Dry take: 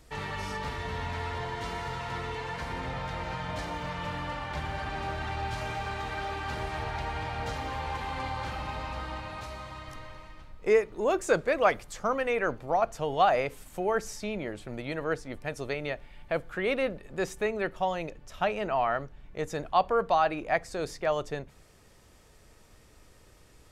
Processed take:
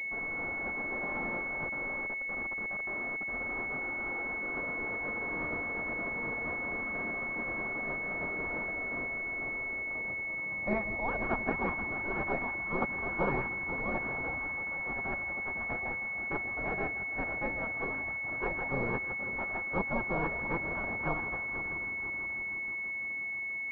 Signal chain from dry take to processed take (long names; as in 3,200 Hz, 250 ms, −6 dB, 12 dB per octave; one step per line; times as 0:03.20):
echo machine with several playback heads 162 ms, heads first and third, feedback 72%, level −13 dB
gate on every frequency bin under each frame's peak −15 dB weak
0:01.66–0:03.28: output level in coarse steps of 15 dB
switching amplifier with a slow clock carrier 2,200 Hz
level +6.5 dB